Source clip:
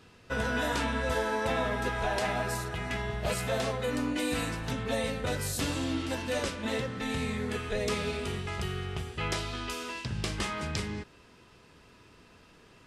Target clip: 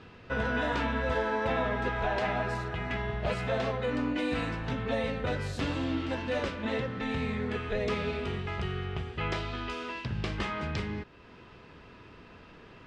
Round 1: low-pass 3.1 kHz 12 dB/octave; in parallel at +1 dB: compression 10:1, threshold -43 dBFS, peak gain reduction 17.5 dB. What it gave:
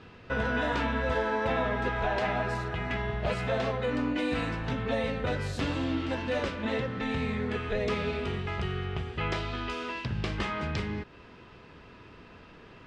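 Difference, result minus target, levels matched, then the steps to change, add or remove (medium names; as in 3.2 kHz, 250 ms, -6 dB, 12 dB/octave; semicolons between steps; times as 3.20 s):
compression: peak gain reduction -9.5 dB
change: compression 10:1, threshold -53.5 dBFS, peak gain reduction 27 dB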